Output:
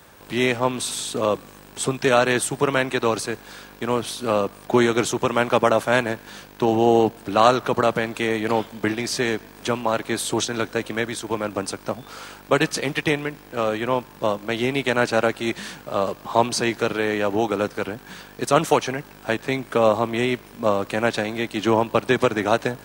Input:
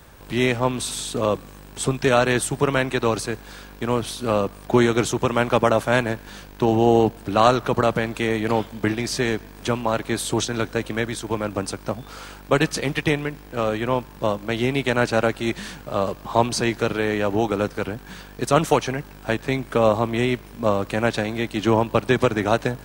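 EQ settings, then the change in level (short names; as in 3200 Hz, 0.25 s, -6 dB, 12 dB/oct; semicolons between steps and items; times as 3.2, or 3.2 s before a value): HPF 210 Hz 6 dB/oct; +1.0 dB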